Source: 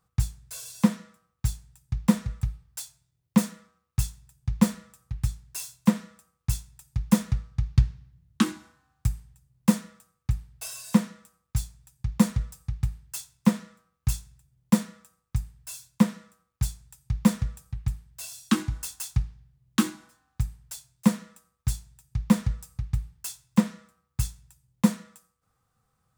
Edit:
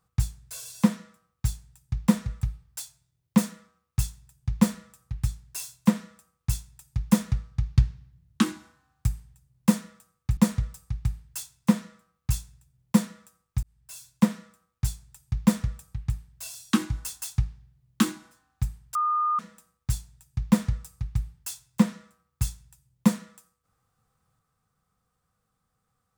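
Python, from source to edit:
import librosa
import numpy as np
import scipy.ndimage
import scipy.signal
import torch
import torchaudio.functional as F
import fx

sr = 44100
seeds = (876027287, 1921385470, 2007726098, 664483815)

y = fx.edit(x, sr, fx.cut(start_s=10.37, length_s=1.78),
    fx.fade_in_span(start_s=15.41, length_s=0.48),
    fx.bleep(start_s=20.73, length_s=0.44, hz=1220.0, db=-21.5), tone=tone)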